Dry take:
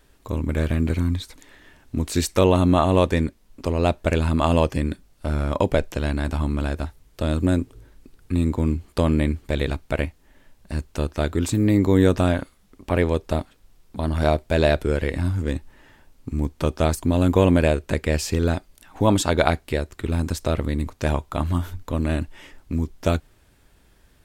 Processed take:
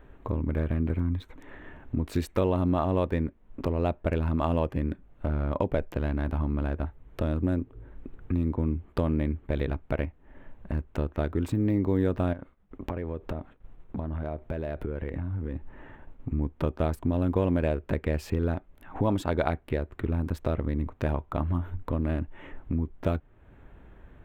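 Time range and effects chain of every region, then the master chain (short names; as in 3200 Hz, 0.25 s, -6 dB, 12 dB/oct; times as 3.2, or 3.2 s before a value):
12.33–16.29 expander -51 dBFS + compressor 8:1, threshold -28 dBFS
whole clip: Wiener smoothing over 9 samples; bell 7100 Hz -15 dB 2 oct; compressor 2:1, threshold -41 dBFS; gain +7 dB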